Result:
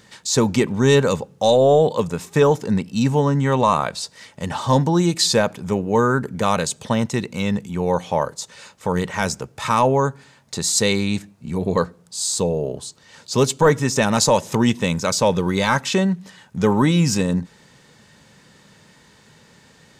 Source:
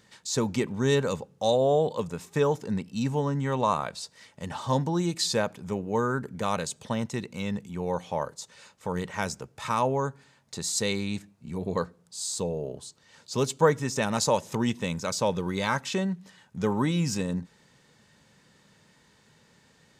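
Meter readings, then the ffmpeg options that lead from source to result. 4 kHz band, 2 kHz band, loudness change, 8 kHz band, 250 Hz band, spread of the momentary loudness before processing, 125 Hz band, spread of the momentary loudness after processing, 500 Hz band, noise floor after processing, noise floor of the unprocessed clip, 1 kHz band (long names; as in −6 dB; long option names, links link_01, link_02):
+9.0 dB, +9.0 dB, +9.0 dB, +9.5 dB, +9.5 dB, 12 LU, +9.5 dB, 11 LU, +8.5 dB, −52 dBFS, −62 dBFS, +8.5 dB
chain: -af "apsyclip=17dB,volume=-7.5dB"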